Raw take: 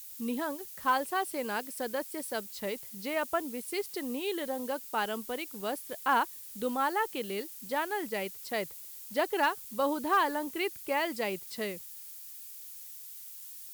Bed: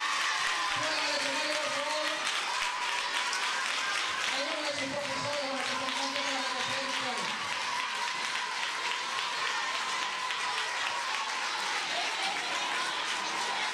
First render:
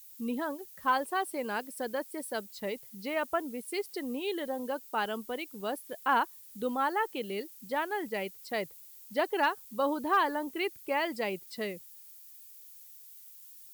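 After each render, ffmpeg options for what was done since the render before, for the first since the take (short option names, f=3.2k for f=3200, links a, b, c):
-af "afftdn=nr=8:nf=-46"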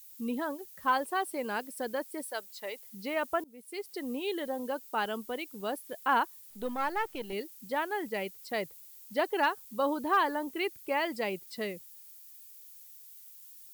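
-filter_complex "[0:a]asettb=1/sr,asplit=3[a][b][c];[a]atrim=end=2.244[d];[b]atrim=start=2.24:end=2.92,asetpts=PTS-STARTPTS,afade=t=in:d=0.004:c=qsin,afade=t=out:st=0.676:d=0.004:c=qsin,highpass=570[e];[c]atrim=start=2.916[f];[d][e]acrossfade=d=0.004:c1=hsin:c2=qsin[g];[g][f]acrossfade=d=0.004:c1=qsin:c2=hsin,asettb=1/sr,asplit=3[h][i][j];[h]atrim=end=6.504[k];[i]atrim=start=6.5:end=7.33,asetpts=PTS-STARTPTS,afade=t=in:d=0.004:c=qsin,afade=t=out:st=0.826:d=0.004:c=qsin,aeval=exprs='if(lt(val(0),0),0.447*val(0),val(0))':c=same[l];[j]atrim=start=7.326[m];[k][l]acrossfade=d=0.004:c1=hsin:c2=qsin[n];[n][m]acrossfade=d=0.004:c1=qsin:c2=hsin,asplit=2[o][p];[o]atrim=end=3.44,asetpts=PTS-STARTPTS,afade=t=out:st=3.436:d=0.004:c=hsin:silence=0.0707946[q];[p]atrim=start=3.44,asetpts=PTS-STARTPTS,afade=t=in:d=0.65:silence=0.0707946[r];[q][r]concat=n=2:v=0:a=1"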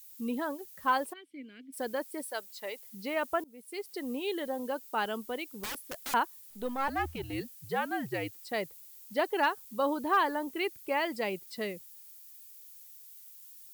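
-filter_complex "[0:a]asplit=3[a][b][c];[a]afade=t=out:st=1.12:d=0.02[d];[b]asplit=3[e][f][g];[e]bandpass=f=270:t=q:w=8,volume=0dB[h];[f]bandpass=f=2.29k:t=q:w=8,volume=-6dB[i];[g]bandpass=f=3.01k:t=q:w=8,volume=-9dB[j];[h][i][j]amix=inputs=3:normalize=0,afade=t=in:st=1.12:d=0.02,afade=t=out:st=1.72:d=0.02[k];[c]afade=t=in:st=1.72:d=0.02[l];[d][k][l]amix=inputs=3:normalize=0,asettb=1/sr,asplit=3[m][n][o];[m]atrim=end=5.464[p];[n]atrim=start=5.46:end=6.14,asetpts=PTS-STARTPTS,afade=t=in:d=0.004:c=qsin,afade=t=out:st=0.676:d=0.004:c=qsin,aeval=exprs='(mod(39.8*val(0)+1,2)-1)/39.8':c=same[q];[o]atrim=start=6.136[r];[p][q]acrossfade=d=0.004:c1=hsin:c2=qsin[s];[s][r]acrossfade=d=0.004:c1=qsin:c2=hsin,asettb=1/sr,asplit=3[t][u][v];[t]atrim=end=6.884[w];[u]atrim=start=6.88:end=8.51,asetpts=PTS-STARTPTS,afade=t=in:d=0.004:c=qsin,afade=t=out:st=1.626:d=0.004:c=qsin,afreqshift=-82[x];[v]atrim=start=8.506[y];[w][x]acrossfade=d=0.004:c1=hsin:c2=qsin[z];[z][y]acrossfade=d=0.004:c1=qsin:c2=hsin"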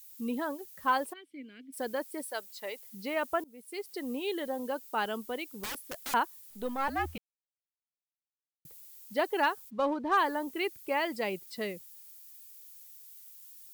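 -filter_complex "[0:a]asplit=3[a][b][c];[a]afade=t=out:st=9.69:d=0.02[d];[b]adynamicsmooth=sensitivity=7:basefreq=2.1k,afade=t=in:st=9.69:d=0.02,afade=t=out:st=10.16:d=0.02[e];[c]afade=t=in:st=10.16:d=0.02[f];[d][e][f]amix=inputs=3:normalize=0,asplit=3[g][h][i];[g]atrim=end=7.18,asetpts=PTS-STARTPTS,afade=t=out:st=7.176:d=0.004:c=hsin[j];[h]atrim=start=7.18:end=8.65,asetpts=PTS-STARTPTS,volume=0[k];[i]atrim=start=8.65,asetpts=PTS-STARTPTS,afade=t=in:d=0.004:c=hsin[l];[j][k][l]concat=n=3:v=0:a=1"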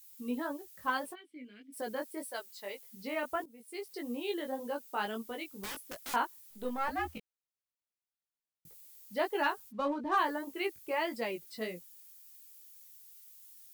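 -af "flanger=delay=17:depth=3.3:speed=1.7"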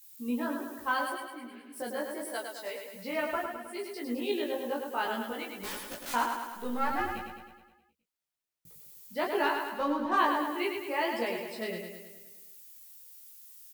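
-filter_complex "[0:a]asplit=2[a][b];[b]adelay=17,volume=-2dB[c];[a][c]amix=inputs=2:normalize=0,aecho=1:1:105|210|315|420|525|630|735|840:0.531|0.303|0.172|0.0983|0.056|0.0319|0.0182|0.0104"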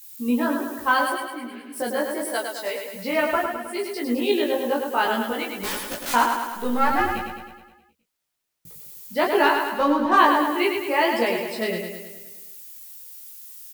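-af "volume=10dB"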